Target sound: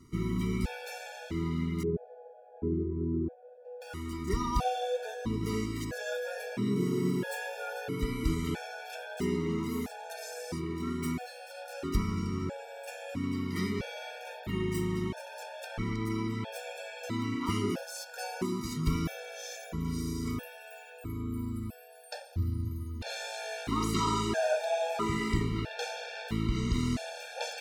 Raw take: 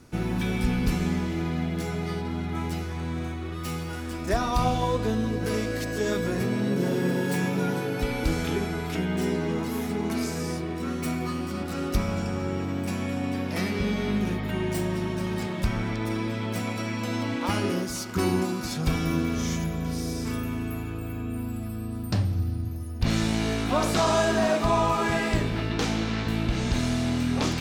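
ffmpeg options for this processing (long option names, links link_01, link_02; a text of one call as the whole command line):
ffmpeg -i in.wav -filter_complex "[0:a]asettb=1/sr,asplit=3[link_01][link_02][link_03];[link_01]atrim=end=1.834[link_04];[link_02]atrim=start=1.83:end=3.82,asetpts=PTS-STARTPTS,afade=type=in:duration=0.004:curve=qsin,afade=type=out:start_time=1.986:duration=0.004:curve=qsin,lowpass=frequency=390:width_type=q:width=3.8[link_05];[link_03]atrim=start=3.816[link_06];[link_04][link_05]acrossfade=duration=0.004:curve1=hsin:curve2=qsin[link_07];[link_07][link_06]acrossfade=duration=0.004:curve1=qsin:curve2=hsin,afftfilt=real='re*gt(sin(2*PI*0.76*pts/sr)*(1-2*mod(floor(b*sr/1024/460),2)),0)':imag='im*gt(sin(2*PI*0.76*pts/sr)*(1-2*mod(floor(b*sr/1024/460),2)),0)':win_size=1024:overlap=0.75,volume=-3.5dB" out.wav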